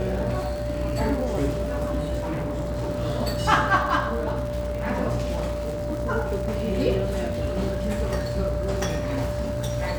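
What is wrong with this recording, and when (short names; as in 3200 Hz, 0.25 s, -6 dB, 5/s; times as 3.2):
buzz 60 Hz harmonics 37 -31 dBFS
crackle 110/s -31 dBFS
tone 590 Hz -29 dBFS
2.2–2.88 clipped -24 dBFS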